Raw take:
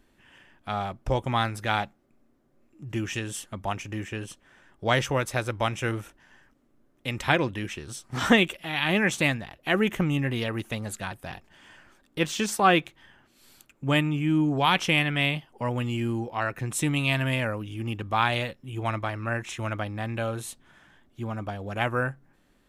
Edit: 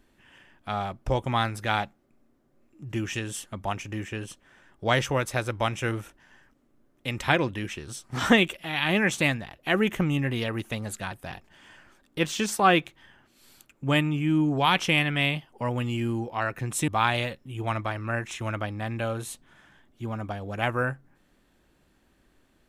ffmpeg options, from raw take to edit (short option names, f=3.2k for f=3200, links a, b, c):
-filter_complex "[0:a]asplit=2[a][b];[a]atrim=end=16.882[c];[b]atrim=start=18.058[d];[c][d]acrossfade=d=0.004:c1=hsin:c2=hsin"